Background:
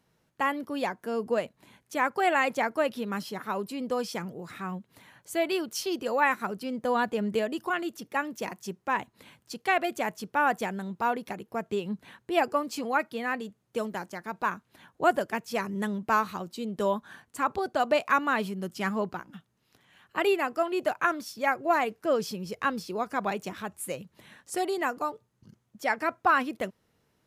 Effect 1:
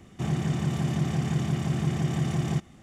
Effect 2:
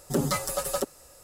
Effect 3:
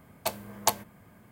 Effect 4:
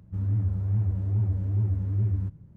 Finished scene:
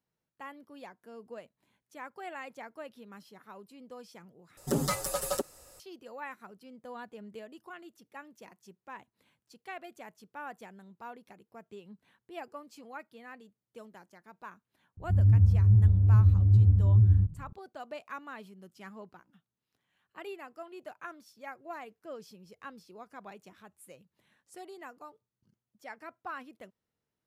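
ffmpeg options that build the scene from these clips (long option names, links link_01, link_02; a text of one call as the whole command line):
ffmpeg -i bed.wav -i cue0.wav -i cue1.wav -i cue2.wav -i cue3.wav -filter_complex "[0:a]volume=-17.5dB[link_01];[4:a]aemphasis=mode=reproduction:type=riaa[link_02];[link_01]asplit=2[link_03][link_04];[link_03]atrim=end=4.574[link_05];[2:a]atrim=end=1.23,asetpts=PTS-STARTPTS,volume=-3dB[link_06];[link_04]atrim=start=5.796[link_07];[link_02]atrim=end=2.56,asetpts=PTS-STARTPTS,volume=-8dB,afade=type=in:duration=0.004:curve=hsin,afade=type=out:start_time=2.556:duration=0.004:curve=hsin,adelay=14970[link_08];[link_05][link_06]acrossfade=duration=0.004:curve1=hsin:curve2=hsin[link_09];[link_09][link_07]acrossfade=duration=0.004:curve1=hsin:curve2=hsin[link_10];[link_10][link_08]amix=inputs=2:normalize=0" out.wav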